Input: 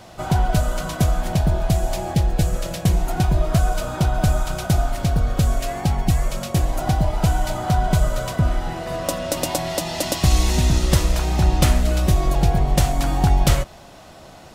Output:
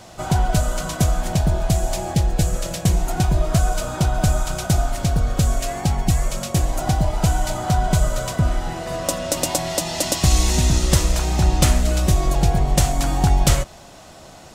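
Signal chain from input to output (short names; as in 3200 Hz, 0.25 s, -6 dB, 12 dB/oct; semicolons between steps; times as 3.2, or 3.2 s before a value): bell 7300 Hz +6 dB 1 oct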